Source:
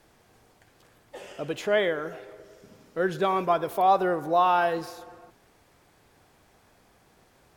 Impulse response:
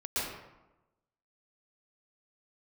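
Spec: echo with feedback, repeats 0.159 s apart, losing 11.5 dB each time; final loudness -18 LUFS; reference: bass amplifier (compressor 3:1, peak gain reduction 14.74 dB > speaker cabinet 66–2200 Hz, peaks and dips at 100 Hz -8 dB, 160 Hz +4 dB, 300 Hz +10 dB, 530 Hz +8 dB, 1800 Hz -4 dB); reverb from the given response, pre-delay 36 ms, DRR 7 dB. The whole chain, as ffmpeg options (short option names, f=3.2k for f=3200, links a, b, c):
-filter_complex "[0:a]aecho=1:1:159|318|477:0.266|0.0718|0.0194,asplit=2[a][b];[1:a]atrim=start_sample=2205,adelay=36[c];[b][c]afir=irnorm=-1:irlink=0,volume=-13.5dB[d];[a][d]amix=inputs=2:normalize=0,acompressor=threshold=-36dB:ratio=3,highpass=f=66:w=0.5412,highpass=f=66:w=1.3066,equalizer=f=100:t=q:w=4:g=-8,equalizer=f=160:t=q:w=4:g=4,equalizer=f=300:t=q:w=4:g=10,equalizer=f=530:t=q:w=4:g=8,equalizer=f=1.8k:t=q:w=4:g=-4,lowpass=f=2.2k:w=0.5412,lowpass=f=2.2k:w=1.3066,volume=15.5dB"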